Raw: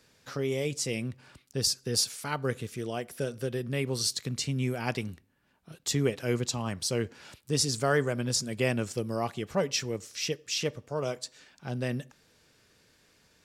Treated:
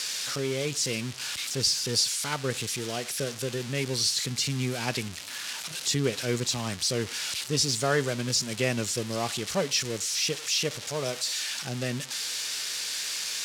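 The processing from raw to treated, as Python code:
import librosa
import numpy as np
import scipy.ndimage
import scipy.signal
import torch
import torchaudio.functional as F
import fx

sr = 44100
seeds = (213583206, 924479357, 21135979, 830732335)

y = x + 0.5 * 10.0 ** (-20.0 / 20.0) * np.diff(np.sign(x), prepend=np.sign(x[:1]))
y = scipy.signal.sosfilt(scipy.signal.butter(2, 4900.0, 'lowpass', fs=sr, output='sos'), y)
y = fx.high_shelf(y, sr, hz=3700.0, db=6.5)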